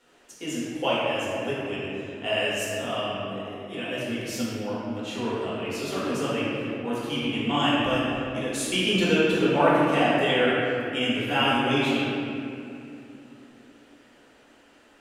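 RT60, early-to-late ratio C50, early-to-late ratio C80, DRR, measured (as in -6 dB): 2.8 s, -4.0 dB, -1.5 dB, -9.5 dB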